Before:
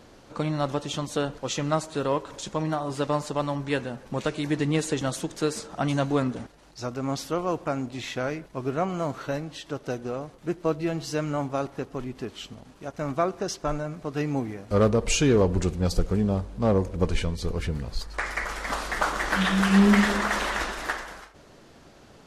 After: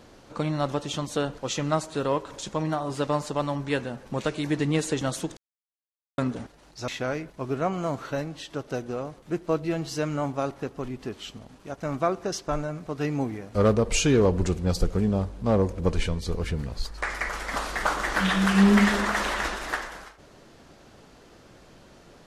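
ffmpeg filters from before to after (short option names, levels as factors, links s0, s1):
-filter_complex "[0:a]asplit=4[s0][s1][s2][s3];[s0]atrim=end=5.37,asetpts=PTS-STARTPTS,afade=t=out:st=5.366:d=0.004:c=hsin[s4];[s1]atrim=start=5.37:end=6.18,asetpts=PTS-STARTPTS,volume=0[s5];[s2]atrim=start=6.18:end=6.882,asetpts=PTS-STARTPTS,afade=t=in:d=0.004:c=hsin[s6];[s3]atrim=start=8.038[s7];[s4][s5][s6]concat=n=3:v=0:a=1[s8];[s8][s7]acrossfade=d=0.004:c1=hsin:c2=hsin"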